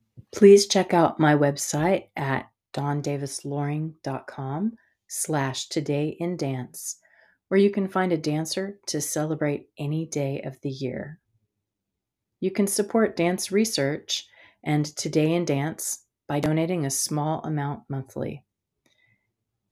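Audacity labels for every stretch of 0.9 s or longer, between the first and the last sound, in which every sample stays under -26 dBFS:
11.030000	12.430000	silence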